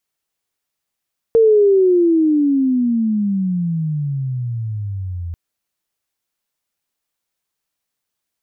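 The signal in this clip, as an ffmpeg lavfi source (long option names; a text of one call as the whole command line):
ffmpeg -f lavfi -i "aevalsrc='pow(10,(-7.5-15.5*t/3.99)/20)*sin(2*PI*460*3.99/log(83/460)*(exp(log(83/460)*t/3.99)-1))':duration=3.99:sample_rate=44100" out.wav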